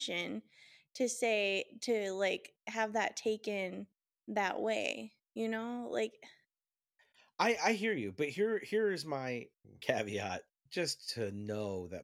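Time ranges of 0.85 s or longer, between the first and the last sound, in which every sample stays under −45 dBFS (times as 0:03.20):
0:06.25–0:07.39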